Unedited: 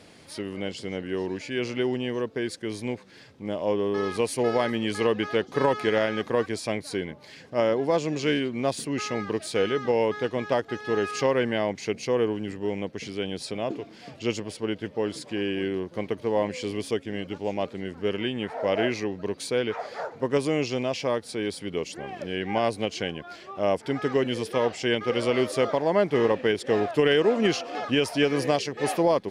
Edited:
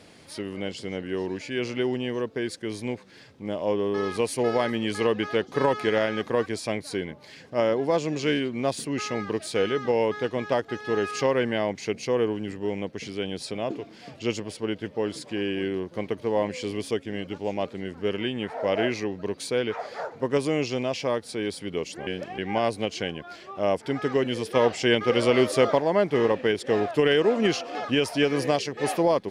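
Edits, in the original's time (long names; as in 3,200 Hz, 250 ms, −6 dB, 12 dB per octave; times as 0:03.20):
0:22.07–0:22.38: reverse
0:24.55–0:25.80: clip gain +3.5 dB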